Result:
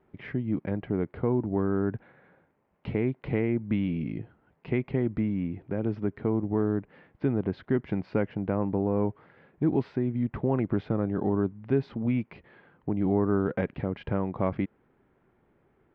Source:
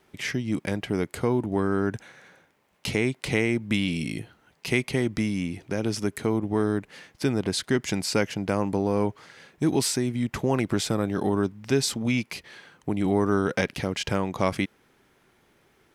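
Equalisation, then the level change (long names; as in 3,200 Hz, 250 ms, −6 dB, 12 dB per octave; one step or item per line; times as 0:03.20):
high-frequency loss of the air 340 metres
head-to-tape spacing loss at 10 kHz 40 dB
0.0 dB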